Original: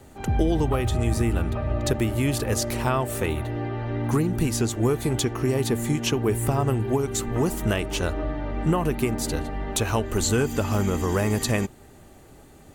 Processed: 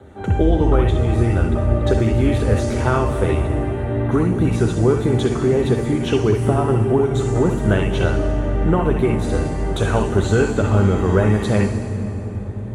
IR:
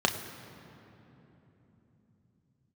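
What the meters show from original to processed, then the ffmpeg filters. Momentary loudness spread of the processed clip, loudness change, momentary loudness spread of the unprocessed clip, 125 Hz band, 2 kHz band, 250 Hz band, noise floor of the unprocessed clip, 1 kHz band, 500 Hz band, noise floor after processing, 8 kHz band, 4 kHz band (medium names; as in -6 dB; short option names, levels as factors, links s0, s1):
5 LU, +6.5 dB, 5 LU, +7.5 dB, +4.5 dB, +6.5 dB, -49 dBFS, +5.0 dB, +7.5 dB, -26 dBFS, -6.5 dB, -1.0 dB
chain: -filter_complex "[1:a]atrim=start_sample=2205,asetrate=22050,aresample=44100[s0];[0:a][s0]afir=irnorm=-1:irlink=0,volume=0.251"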